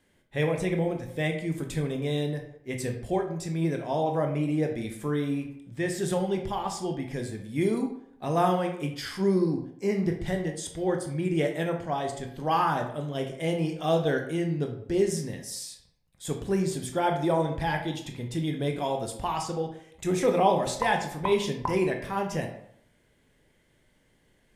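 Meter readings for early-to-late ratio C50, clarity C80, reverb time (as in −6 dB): 8.0 dB, 11.0 dB, 0.70 s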